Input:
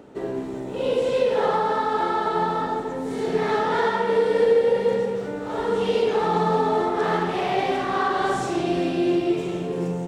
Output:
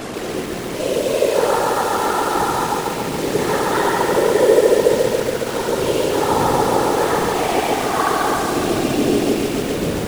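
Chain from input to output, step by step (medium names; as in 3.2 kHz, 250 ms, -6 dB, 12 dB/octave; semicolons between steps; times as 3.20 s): one-bit delta coder 64 kbps, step -25 dBFS; whisper effect; bit-crushed delay 139 ms, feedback 80%, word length 6-bit, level -5 dB; trim +2.5 dB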